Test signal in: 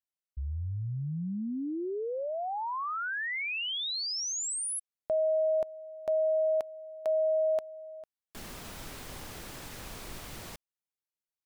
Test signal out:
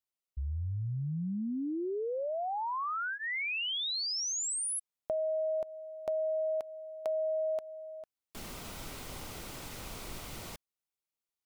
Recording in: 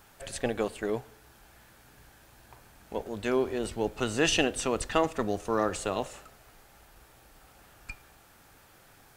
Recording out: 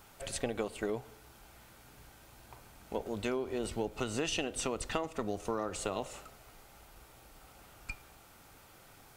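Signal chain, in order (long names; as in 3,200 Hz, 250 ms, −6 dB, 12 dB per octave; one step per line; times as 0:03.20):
notch filter 1,700 Hz, Q 8.7
downward compressor 10 to 1, threshold −30 dBFS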